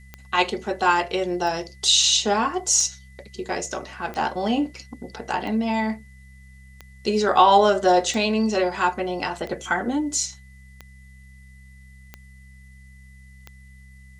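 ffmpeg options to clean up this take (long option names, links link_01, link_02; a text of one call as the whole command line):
ffmpeg -i in.wav -af "adeclick=threshold=4,bandreject=frequency=65.8:width_type=h:width=4,bandreject=frequency=131.6:width_type=h:width=4,bandreject=frequency=197.4:width_type=h:width=4,bandreject=frequency=2000:width=30,agate=range=-21dB:threshold=-39dB" out.wav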